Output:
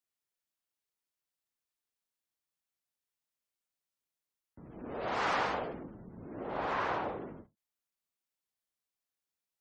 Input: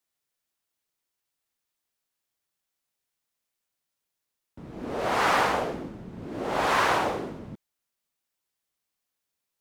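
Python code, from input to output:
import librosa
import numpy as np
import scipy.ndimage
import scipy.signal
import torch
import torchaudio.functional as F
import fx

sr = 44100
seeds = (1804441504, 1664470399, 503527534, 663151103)

y = fx.spec_gate(x, sr, threshold_db=-30, keep='strong')
y = fx.lowpass(y, sr, hz=1600.0, slope=6, at=(6.43, 7.22))
y = fx.end_taper(y, sr, db_per_s=260.0)
y = y * 10.0 ** (-8.5 / 20.0)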